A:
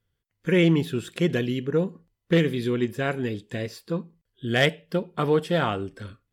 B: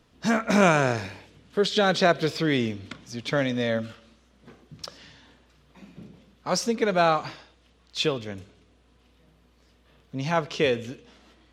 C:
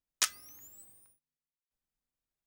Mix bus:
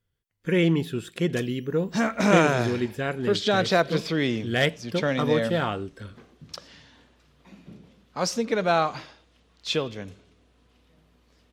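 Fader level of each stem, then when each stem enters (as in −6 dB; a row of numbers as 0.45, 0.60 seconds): −2.0, −1.0, −14.5 decibels; 0.00, 1.70, 1.15 seconds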